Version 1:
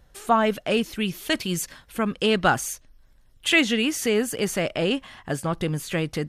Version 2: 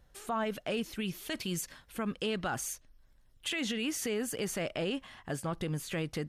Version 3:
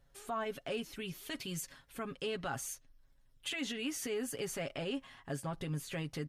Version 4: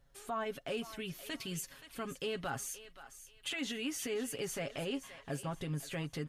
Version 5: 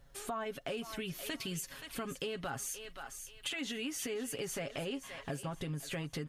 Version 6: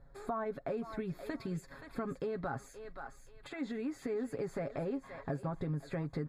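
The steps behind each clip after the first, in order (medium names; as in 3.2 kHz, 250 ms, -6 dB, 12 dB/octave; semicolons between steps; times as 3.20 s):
peak limiter -17.5 dBFS, peak gain reduction 11.5 dB; trim -7 dB
comb 7.3 ms, depth 58%; trim -5.5 dB
thinning echo 525 ms, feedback 36%, high-pass 830 Hz, level -12 dB
compression 4:1, threshold -44 dBFS, peak gain reduction 9.5 dB; trim +7 dB
boxcar filter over 15 samples; trim +3 dB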